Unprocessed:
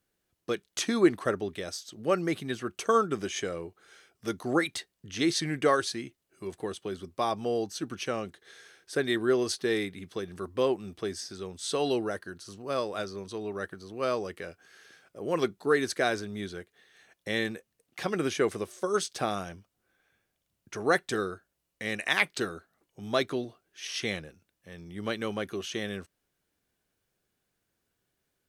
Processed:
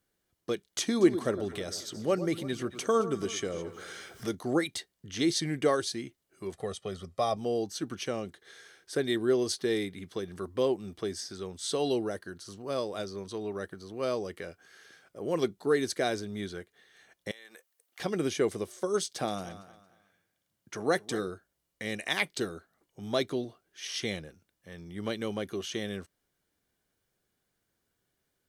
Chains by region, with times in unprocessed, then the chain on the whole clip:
0:00.79–0:04.35: upward compression, threshold −31 dBFS + delay that swaps between a low-pass and a high-pass 110 ms, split 1,300 Hz, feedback 63%, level −12 dB
0:06.54–0:07.37: low-pass filter 11,000 Hz + comb filter 1.6 ms, depth 74%
0:17.31–0:18.00: high-pass filter 700 Hz + high-shelf EQ 11,000 Hz +9.5 dB + downward compressor 16 to 1, threshold −45 dBFS
0:19.05–0:21.28: high-pass filter 100 Hz + notch filter 400 Hz, Q 13 + repeating echo 228 ms, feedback 29%, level −17 dB
whole clip: notch filter 2,600 Hz, Q 13; dynamic equaliser 1,400 Hz, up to −7 dB, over −43 dBFS, Q 1

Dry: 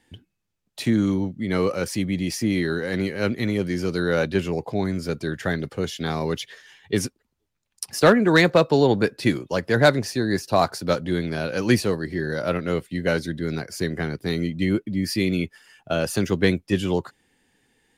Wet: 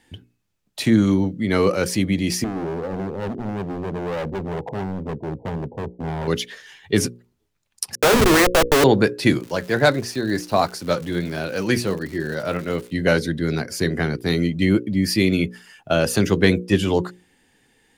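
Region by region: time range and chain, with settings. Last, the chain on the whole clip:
0:02.44–0:06.28: linear-phase brick-wall low-pass 1,000 Hz + gain into a clipping stage and back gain 29 dB
0:07.95–0:08.84: Butterworth high-pass 300 Hz + parametric band 7,200 Hz −11 dB 1.6 octaves + comparator with hysteresis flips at −25 dBFS
0:09.39–0:12.91: flanger 1.4 Hz, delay 2.5 ms, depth 4.5 ms, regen +72% + surface crackle 240 per second −36 dBFS
whole clip: mains-hum notches 60/120/180/240/300/360/420/480/540 Hz; boost into a limiter +8 dB; level −3 dB

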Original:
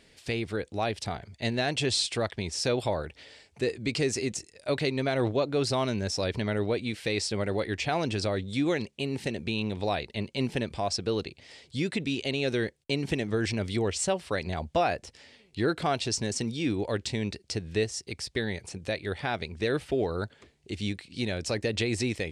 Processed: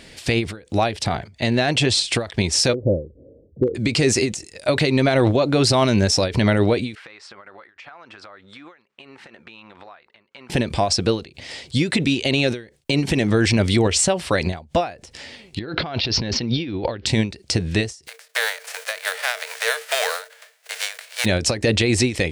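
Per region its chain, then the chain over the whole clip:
0:00.96–0:02.09: high-pass filter 66 Hz + high-shelf EQ 5,200 Hz −4.5 dB + downward compressor 2.5 to 1, threshold −30 dBFS
0:02.73–0:03.75: Chebyshev low-pass filter 530 Hz, order 5 + hard clipping −21.5 dBFS
0:06.95–0:10.50: resonant band-pass 1,300 Hz, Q 3 + downward compressor 16 to 1, threshold −52 dBFS
0:15.59–0:17.06: Butterworth low-pass 5,000 Hz 48 dB per octave + compressor whose output falls as the input rises −39 dBFS
0:18.06–0:21.24: spectral envelope flattened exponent 0.3 + Chebyshev high-pass with heavy ripple 440 Hz, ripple 9 dB
whole clip: notch filter 430 Hz, Q 12; boost into a limiter +22.5 dB; every ending faded ahead of time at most 160 dB per second; level −7.5 dB

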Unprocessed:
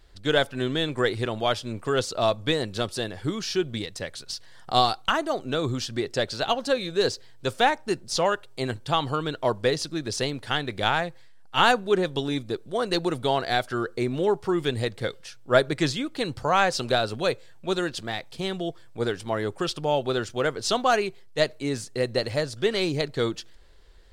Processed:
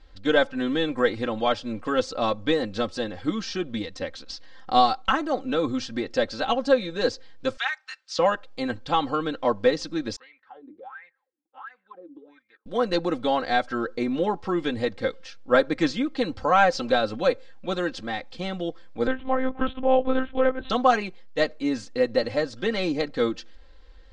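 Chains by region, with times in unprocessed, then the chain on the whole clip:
0:03.94–0:04.80: low-pass filter 8,000 Hz + parametric band 320 Hz +4 dB 0.4 octaves
0:07.57–0:08.19: high-pass filter 1,300 Hz 24 dB per octave + high-shelf EQ 7,400 Hz −6 dB
0:10.16–0:12.66: notch filter 650 Hz, Q 5.2 + LFO wah 1.4 Hz 290–2,200 Hz, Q 16 + downward compressor 3 to 1, threshold −44 dBFS
0:19.07–0:20.70: low-pass filter 2,500 Hz 6 dB per octave + one-pitch LPC vocoder at 8 kHz 260 Hz
whole clip: Bessel low-pass filter 4,400 Hz, order 6; comb filter 3.8 ms, depth 83%; dynamic equaliser 3,300 Hz, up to −4 dB, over −39 dBFS, Q 1.2

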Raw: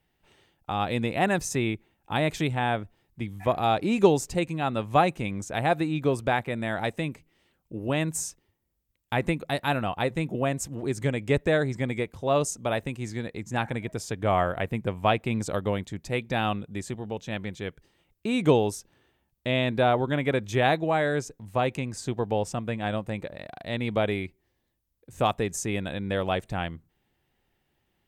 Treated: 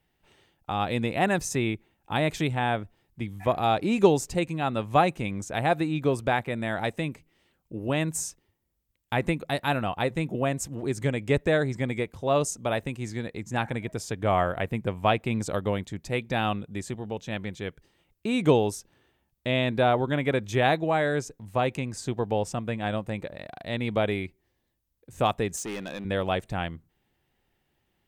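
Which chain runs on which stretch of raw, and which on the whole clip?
0:25.56–0:26.05: high-pass filter 200 Hz + hard clipping −30.5 dBFS
whole clip: no processing

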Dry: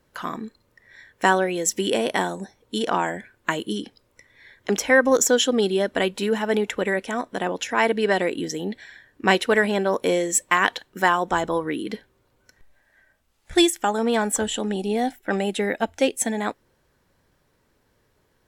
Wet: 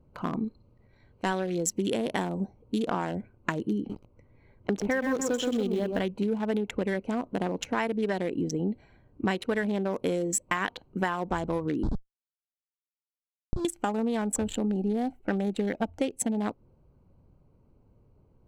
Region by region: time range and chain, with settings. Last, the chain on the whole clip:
0:00.44–0:01.67: parametric band 4,000 Hz +8.5 dB 0.92 octaves + transient designer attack −9 dB, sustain 0 dB
0:03.77–0:06.05: high-shelf EQ 8,200 Hz −9.5 dB + feedback echo at a low word length 125 ms, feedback 35%, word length 6 bits, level −5 dB
0:11.83–0:13.65: bass and treble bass +3 dB, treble −4 dB + comparator with hysteresis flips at −29 dBFS + low-pass filter 7,300 Hz 24 dB per octave
whole clip: adaptive Wiener filter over 25 samples; bass and treble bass +9 dB, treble 0 dB; downward compressor 6 to 1, threshold −25 dBFS

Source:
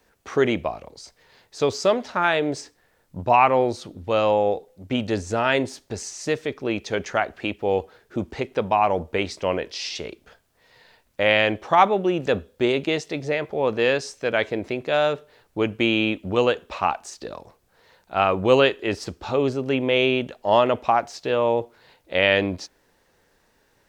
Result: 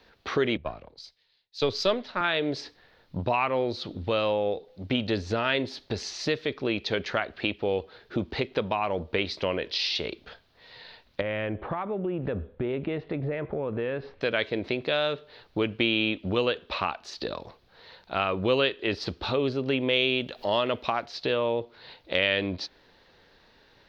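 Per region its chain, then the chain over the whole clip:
0:00.57–0:02.21: gain on one half-wave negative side −3 dB + multiband upward and downward expander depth 100%
0:11.21–0:14.21: Bessel low-pass filter 1,500 Hz, order 4 + low-shelf EQ 120 Hz +11 dB + downward compressor 3 to 1, threshold −29 dBFS
0:19.93–0:21.06: high-shelf EQ 5,900 Hz +11.5 dB + upward compression, threshold −35 dBFS
whole clip: high shelf with overshoot 5,800 Hz −13 dB, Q 3; downward compressor 2 to 1, threshold −32 dBFS; dynamic equaliser 800 Hz, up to −6 dB, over −45 dBFS, Q 3.1; level +3.5 dB

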